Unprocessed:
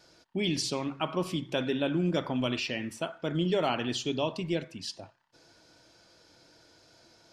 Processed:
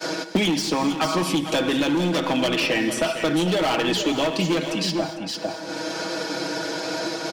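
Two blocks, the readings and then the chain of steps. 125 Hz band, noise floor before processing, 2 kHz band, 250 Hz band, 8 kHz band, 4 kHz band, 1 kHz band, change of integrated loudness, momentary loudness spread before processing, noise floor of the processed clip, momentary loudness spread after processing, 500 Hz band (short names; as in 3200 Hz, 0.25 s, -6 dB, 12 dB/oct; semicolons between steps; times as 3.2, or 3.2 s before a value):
+5.0 dB, -62 dBFS, +12.0 dB, +9.5 dB, +11.0 dB, +10.5 dB, +10.5 dB, +8.0 dB, 9 LU, -33 dBFS, 7 LU, +8.5 dB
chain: expander -52 dBFS; HPF 190 Hz 24 dB/oct; comb 6.3 ms, depth 70%; in parallel at +2.5 dB: compressor, threshold -39 dBFS, peak gain reduction 17 dB; on the sum: hard clip -25.5 dBFS, distortion -9 dB; echo 0.451 s -12 dB; non-linear reverb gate 0.26 s flat, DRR 12 dB; three-band squash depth 100%; gain +7.5 dB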